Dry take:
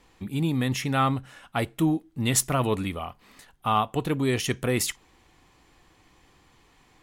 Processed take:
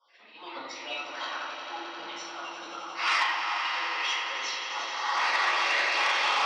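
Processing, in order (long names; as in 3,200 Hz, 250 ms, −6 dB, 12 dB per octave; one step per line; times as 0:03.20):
time-frequency cells dropped at random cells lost 36%
camcorder AGC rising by 80 dB per second
elliptic low-pass filter 5,100 Hz, stop band 50 dB
noise gate −48 dBFS, range −12 dB
high-pass filter 730 Hz 24 dB per octave
spectral tilt −2.5 dB per octave
downward compressor 16 to 1, threshold −31 dBFS, peak gain reduction 15.5 dB
volume swells 395 ms
echo that builds up and dies away 96 ms, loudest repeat 5, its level −11 dB
rectangular room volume 340 cubic metres, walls mixed, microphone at 4.9 metres
wrong playback speed 44.1 kHz file played as 48 kHz
saturating transformer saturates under 2,100 Hz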